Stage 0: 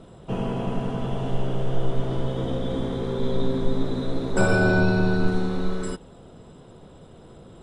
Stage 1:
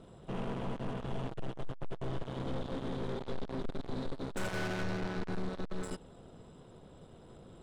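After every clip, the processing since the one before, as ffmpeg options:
ffmpeg -i in.wav -af "aeval=exprs='(tanh(35.5*val(0)+0.7)-tanh(0.7))/35.5':channel_layout=same,volume=-3.5dB" out.wav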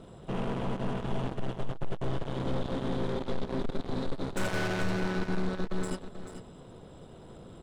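ffmpeg -i in.wav -af "aecho=1:1:437:0.299,volume=5dB" out.wav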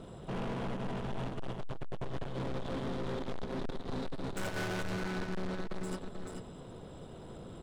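ffmpeg -i in.wav -af "asoftclip=type=tanh:threshold=-34dB,volume=1.5dB" out.wav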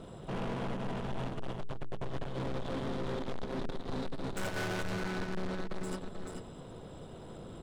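ffmpeg -i in.wav -af "bandreject=frequency=60:width_type=h:width=6,bandreject=frequency=120:width_type=h:width=6,bandreject=frequency=180:width_type=h:width=6,bandreject=frequency=240:width_type=h:width=6,bandreject=frequency=300:width_type=h:width=6,bandreject=frequency=360:width_type=h:width=6,bandreject=frequency=420:width_type=h:width=6,volume=1dB" out.wav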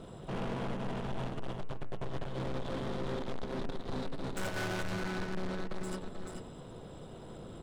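ffmpeg -i in.wav -af "bandreject=frequency=89.44:width_type=h:width=4,bandreject=frequency=178.88:width_type=h:width=4,bandreject=frequency=268.32:width_type=h:width=4,bandreject=frequency=357.76:width_type=h:width=4,bandreject=frequency=447.2:width_type=h:width=4,bandreject=frequency=536.64:width_type=h:width=4,bandreject=frequency=626.08:width_type=h:width=4,bandreject=frequency=715.52:width_type=h:width=4,bandreject=frequency=804.96:width_type=h:width=4,bandreject=frequency=894.4:width_type=h:width=4,bandreject=frequency=983.84:width_type=h:width=4,bandreject=frequency=1073.28:width_type=h:width=4,bandreject=frequency=1162.72:width_type=h:width=4,bandreject=frequency=1252.16:width_type=h:width=4,bandreject=frequency=1341.6:width_type=h:width=4,bandreject=frequency=1431.04:width_type=h:width=4,bandreject=frequency=1520.48:width_type=h:width=4,bandreject=frequency=1609.92:width_type=h:width=4,bandreject=frequency=1699.36:width_type=h:width=4,bandreject=frequency=1788.8:width_type=h:width=4,bandreject=frequency=1878.24:width_type=h:width=4,bandreject=frequency=1967.68:width_type=h:width=4,bandreject=frequency=2057.12:width_type=h:width=4,bandreject=frequency=2146.56:width_type=h:width=4,bandreject=frequency=2236:width_type=h:width=4,bandreject=frequency=2325.44:width_type=h:width=4,bandreject=frequency=2414.88:width_type=h:width=4,bandreject=frequency=2504.32:width_type=h:width=4,bandreject=frequency=2593.76:width_type=h:width=4,bandreject=frequency=2683.2:width_type=h:width=4,bandreject=frequency=2772.64:width_type=h:width=4,bandreject=frequency=2862.08:width_type=h:width=4,bandreject=frequency=2951.52:width_type=h:width=4" out.wav

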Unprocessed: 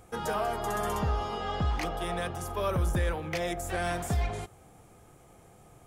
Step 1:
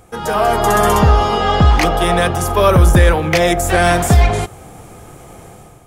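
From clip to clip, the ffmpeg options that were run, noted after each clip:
ffmpeg -i in.wav -af "dynaudnorm=framelen=110:gausssize=7:maxgain=10dB,volume=8.5dB" out.wav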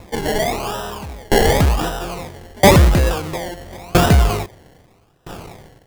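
ffmpeg -i in.wav -af "acrusher=samples=28:mix=1:aa=0.000001:lfo=1:lforange=16.8:lforate=0.91,acontrast=65,aeval=exprs='val(0)*pow(10,-30*if(lt(mod(0.76*n/s,1),2*abs(0.76)/1000),1-mod(0.76*n/s,1)/(2*abs(0.76)/1000),(mod(0.76*n/s,1)-2*abs(0.76)/1000)/(1-2*abs(0.76)/1000))/20)':channel_layout=same" out.wav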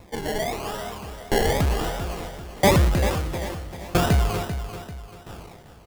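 ffmpeg -i in.wav -af "aecho=1:1:392|784|1176|1568:0.316|0.126|0.0506|0.0202,volume=-7.5dB" out.wav

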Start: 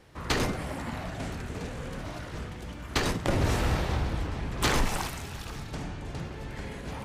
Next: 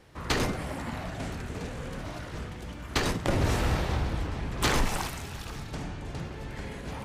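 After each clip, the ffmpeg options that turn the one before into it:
ffmpeg -i in.wav -af anull out.wav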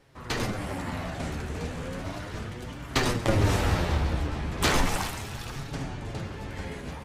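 ffmpeg -i in.wav -af "dynaudnorm=framelen=340:gausssize=3:maxgain=6dB,aecho=1:1:138:0.168,flanger=delay=7:depth=6.7:regen=39:speed=0.35:shape=triangular" out.wav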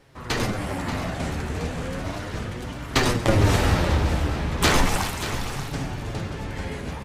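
ffmpeg -i in.wav -af "aecho=1:1:583:0.282,volume=4.5dB" out.wav

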